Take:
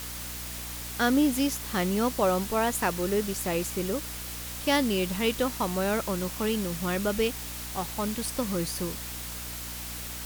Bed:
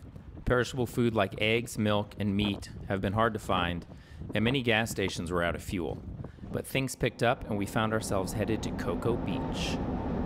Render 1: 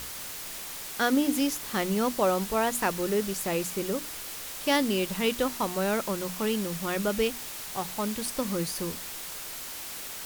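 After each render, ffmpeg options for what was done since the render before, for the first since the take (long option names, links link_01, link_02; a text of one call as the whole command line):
ffmpeg -i in.wav -af "bandreject=frequency=60:width_type=h:width=6,bandreject=frequency=120:width_type=h:width=6,bandreject=frequency=180:width_type=h:width=6,bandreject=frequency=240:width_type=h:width=6,bandreject=frequency=300:width_type=h:width=6" out.wav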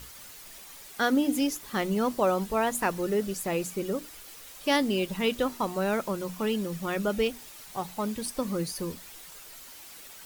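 ffmpeg -i in.wav -af "afftdn=noise_reduction=10:noise_floor=-39" out.wav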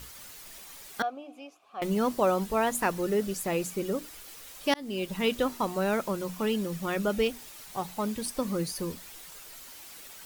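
ffmpeg -i in.wav -filter_complex "[0:a]asettb=1/sr,asplit=3[link_01][link_02][link_03];[link_01]atrim=end=1.024[link_04];[link_02]atrim=start=1.02:end=1.82,asetpts=PTS-STARTPTS,afade=type=in:duration=0.004:curve=qsin,afade=type=out:start_time=0.796:duration=0.004:curve=qsin,asplit=3[link_05][link_06][link_07];[link_05]bandpass=frequency=730:width_type=q:width=8,volume=0dB[link_08];[link_06]bandpass=frequency=1090:width_type=q:width=8,volume=-6dB[link_09];[link_07]bandpass=frequency=2440:width_type=q:width=8,volume=-9dB[link_10];[link_08][link_09][link_10]amix=inputs=3:normalize=0[link_11];[link_03]atrim=start=1.816[link_12];[link_04][link_11]acrossfade=duration=0.004:curve1=hsin:curve2=qsin[link_13];[link_13][link_12]acrossfade=duration=0.004:curve1=qsin:curve2=hsin,asplit=2[link_14][link_15];[link_14]atrim=end=4.74,asetpts=PTS-STARTPTS,afade=type=out:start_time=4.736:duration=0.004:curve=hsin[link_16];[link_15]atrim=start=4.74,asetpts=PTS-STARTPTS,afade=type=in:duration=0.6:curve=qsin[link_17];[link_16][link_17]concat=n=2:v=0:a=1" out.wav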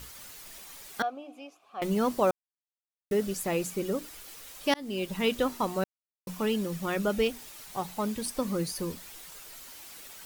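ffmpeg -i in.wav -filter_complex "[0:a]asplit=5[link_01][link_02][link_03][link_04][link_05];[link_01]atrim=end=2.31,asetpts=PTS-STARTPTS,afade=type=out:start_time=2.306:duration=0.004:curve=hsin[link_06];[link_02]atrim=start=2.31:end=3.11,asetpts=PTS-STARTPTS,volume=0[link_07];[link_03]atrim=start=3.11:end=5.84,asetpts=PTS-STARTPTS,afade=type=in:duration=0.004:curve=hsin,afade=type=out:start_time=2.726:duration=0.004:curve=hsin[link_08];[link_04]atrim=start=5.84:end=6.27,asetpts=PTS-STARTPTS,volume=0[link_09];[link_05]atrim=start=6.27,asetpts=PTS-STARTPTS,afade=type=in:duration=0.004:curve=hsin[link_10];[link_06][link_07][link_08][link_09][link_10]concat=n=5:v=0:a=1" out.wav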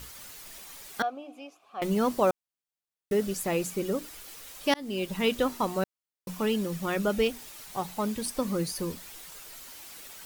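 ffmpeg -i in.wav -af "volume=1dB" out.wav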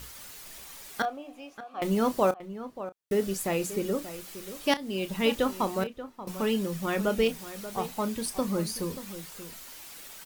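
ffmpeg -i in.wav -filter_complex "[0:a]asplit=2[link_01][link_02];[link_02]adelay=31,volume=-13dB[link_03];[link_01][link_03]amix=inputs=2:normalize=0,asplit=2[link_04][link_05];[link_05]adelay=583.1,volume=-13dB,highshelf=frequency=4000:gain=-13.1[link_06];[link_04][link_06]amix=inputs=2:normalize=0" out.wav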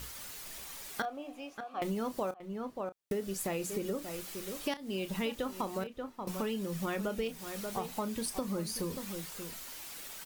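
ffmpeg -i in.wav -af "acompressor=threshold=-32dB:ratio=6" out.wav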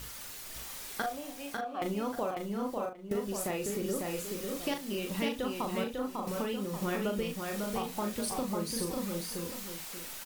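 ffmpeg -i in.wav -filter_complex "[0:a]asplit=2[link_01][link_02];[link_02]adelay=39,volume=-6dB[link_03];[link_01][link_03]amix=inputs=2:normalize=0,asplit=2[link_04][link_05];[link_05]aecho=0:1:548:0.631[link_06];[link_04][link_06]amix=inputs=2:normalize=0" out.wav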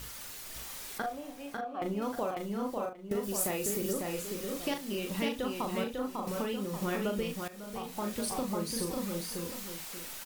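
ffmpeg -i in.wav -filter_complex "[0:a]asettb=1/sr,asplit=3[link_01][link_02][link_03];[link_01]atrim=end=0.984[link_04];[link_02]atrim=start=0.98:end=2.02,asetpts=PTS-STARTPTS,afade=type=in:duration=0.004:curve=qsin,afade=type=out:start_time=1.036:duration=0.004:curve=qsin,highshelf=frequency=2200:gain=-8[link_05];[link_03]atrim=start=2.016[link_06];[link_04][link_05]acrossfade=duration=0.004:curve1=hsin:curve2=qsin[link_07];[link_07][link_06]acrossfade=duration=0.004:curve1=qsin:curve2=hsin,asettb=1/sr,asplit=3[link_08][link_09][link_10];[link_08]atrim=end=3.234[link_11];[link_09]atrim=start=3.23:end=3.93,asetpts=PTS-STARTPTS,afade=type=in:duration=0.004:curve=qsin,afade=type=out:start_time=0.696:duration=0.004:curve=qsin,highshelf=frequency=7200:gain=10[link_12];[link_10]atrim=start=3.926[link_13];[link_11][link_12]acrossfade=duration=0.004:curve1=hsin:curve2=qsin[link_14];[link_14][link_13]acrossfade=duration=0.004:curve1=qsin:curve2=hsin,asplit=2[link_15][link_16];[link_15]atrim=end=7.48,asetpts=PTS-STARTPTS,afade=type=out:start_time=7.476:duration=0.004:curve=hsin:silence=0.158489[link_17];[link_16]atrim=start=7.48,asetpts=PTS-STARTPTS,afade=type=in:duration=0.66:silence=0.158489[link_18];[link_17][link_18]concat=n=2:v=0:a=1" out.wav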